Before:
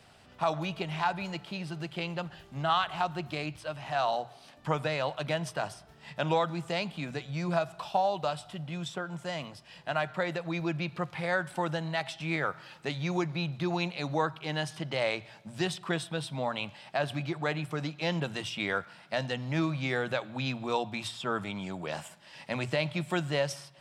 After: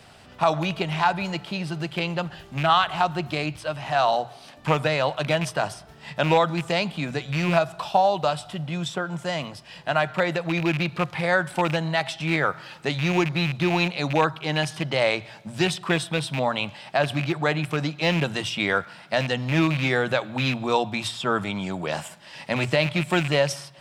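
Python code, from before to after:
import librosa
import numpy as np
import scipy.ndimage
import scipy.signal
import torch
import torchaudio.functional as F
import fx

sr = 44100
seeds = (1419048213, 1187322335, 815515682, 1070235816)

y = fx.rattle_buzz(x, sr, strikes_db=-33.0, level_db=-27.0)
y = y * librosa.db_to_amplitude(8.0)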